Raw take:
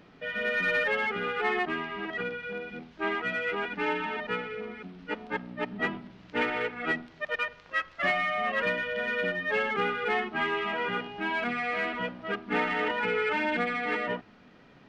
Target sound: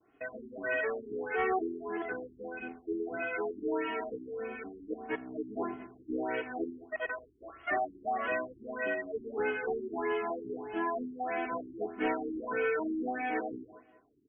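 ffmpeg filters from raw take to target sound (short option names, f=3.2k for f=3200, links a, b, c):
-filter_complex "[0:a]highshelf=f=4.1k:g=-10.5,agate=range=-33dB:threshold=-45dB:ratio=3:detection=peak,asplit=2[a][b];[b]adelay=210,lowpass=f=2k:p=1,volume=-21.5dB,asplit=2[c][d];[d]adelay=210,lowpass=f=2k:p=1,volume=0.27[e];[a][c][e]amix=inputs=3:normalize=0,acrossover=split=1500[f][g];[g]asoftclip=type=tanh:threshold=-39.5dB[h];[f][h]amix=inputs=2:normalize=0,highpass=f=120:p=1,aecho=1:1:2.9:0.84,asetrate=45938,aresample=44100,asplit=2[i][j];[j]acompressor=threshold=-45dB:ratio=6,volume=-2dB[k];[i][k]amix=inputs=2:normalize=0,asoftclip=type=hard:threshold=-21dB,afftfilt=real='re*lt(b*sr/1024,400*pow(3400/400,0.5+0.5*sin(2*PI*1.6*pts/sr)))':imag='im*lt(b*sr/1024,400*pow(3400/400,0.5+0.5*sin(2*PI*1.6*pts/sr)))':win_size=1024:overlap=0.75,volume=-3dB"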